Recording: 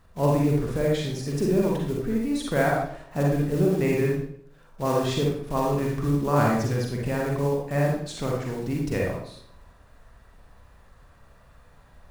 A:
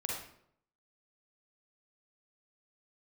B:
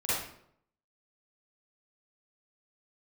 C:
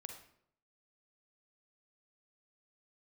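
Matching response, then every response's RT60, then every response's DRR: A; 0.70 s, 0.70 s, 0.70 s; -2.5 dB, -12.5 dB, 4.0 dB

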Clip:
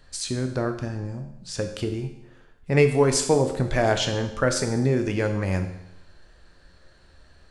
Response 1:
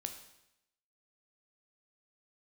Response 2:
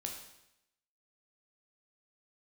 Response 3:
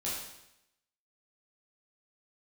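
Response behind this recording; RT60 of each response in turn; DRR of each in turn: 1; 0.85 s, 0.85 s, 0.85 s; 5.5 dB, 1.0 dB, -8.0 dB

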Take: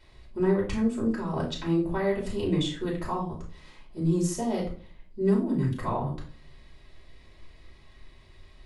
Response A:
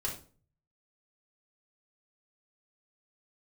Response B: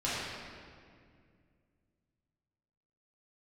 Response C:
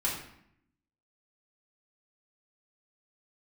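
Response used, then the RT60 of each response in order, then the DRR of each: A; 0.40 s, 2.1 s, 0.70 s; -3.5 dB, -11.0 dB, -6.0 dB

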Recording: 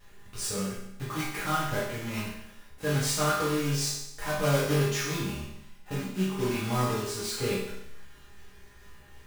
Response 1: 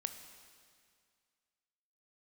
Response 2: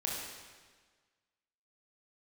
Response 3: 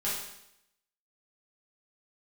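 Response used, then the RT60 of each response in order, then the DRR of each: 3; 2.1 s, 1.5 s, 0.80 s; 8.0 dB, -3.5 dB, -9.0 dB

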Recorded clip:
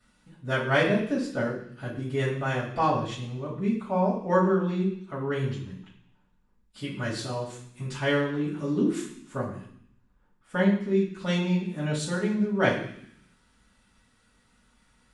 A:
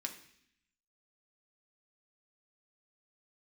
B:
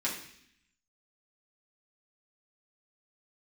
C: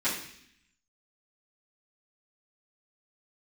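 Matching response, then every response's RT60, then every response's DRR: C; 0.65 s, 0.65 s, 0.65 s; 2.5 dB, -6.5 dB, -14.0 dB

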